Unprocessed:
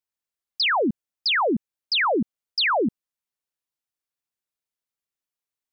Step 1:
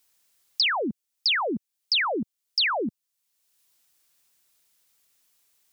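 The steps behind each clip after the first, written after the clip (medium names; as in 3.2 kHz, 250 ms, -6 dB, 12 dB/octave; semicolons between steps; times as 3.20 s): treble shelf 2.6 kHz +9 dB; three bands compressed up and down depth 70%; trim -6 dB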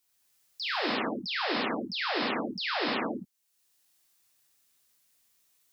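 peak limiter -23.5 dBFS, peak gain reduction 10.5 dB; gated-style reverb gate 370 ms flat, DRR -6 dB; trim -8.5 dB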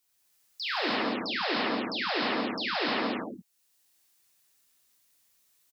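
delay 171 ms -5 dB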